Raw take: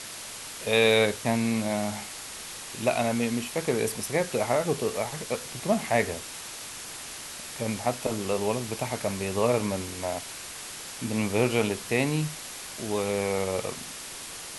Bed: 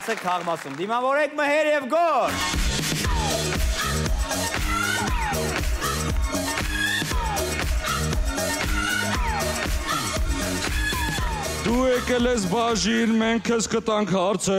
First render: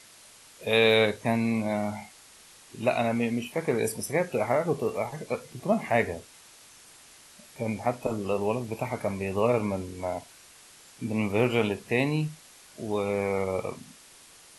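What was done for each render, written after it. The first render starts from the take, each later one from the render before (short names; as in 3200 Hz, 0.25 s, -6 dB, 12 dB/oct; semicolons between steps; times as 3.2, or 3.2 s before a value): noise print and reduce 13 dB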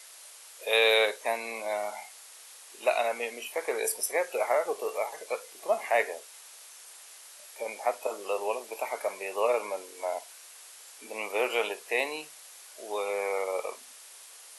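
HPF 470 Hz 24 dB/oct; high shelf 9500 Hz +9.5 dB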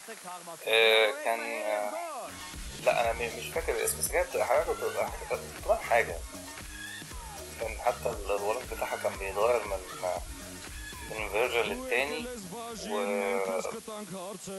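add bed -18.5 dB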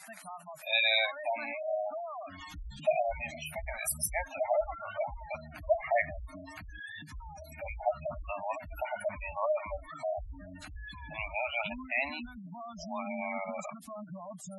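elliptic band-stop 300–600 Hz, stop band 40 dB; spectral gate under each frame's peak -10 dB strong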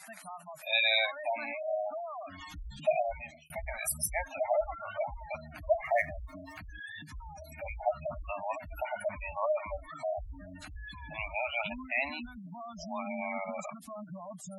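2.99–3.5 fade out; 5.85–6.59 median filter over 5 samples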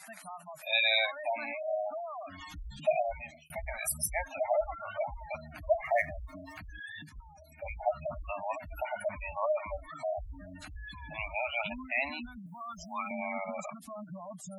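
7.09–7.79 gate -42 dBFS, range -8 dB; 12.46–13.11 EQ curve 150 Hz 0 dB, 460 Hz -17 dB, 1400 Hz +11 dB, 5400 Hz -4 dB, 8000 Hz +13 dB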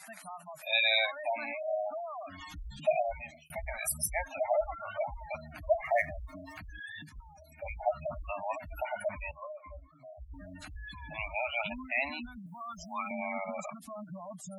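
9.31–10.34 octave resonator C, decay 0.12 s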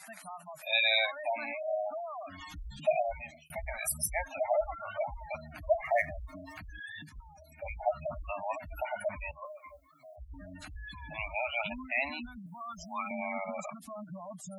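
9.45–10.16 tilt +4 dB/oct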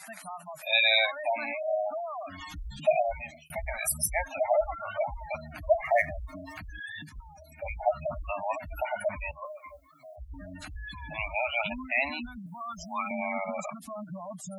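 gain +4 dB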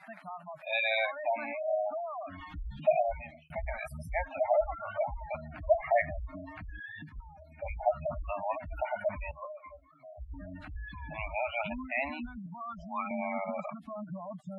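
air absorption 490 m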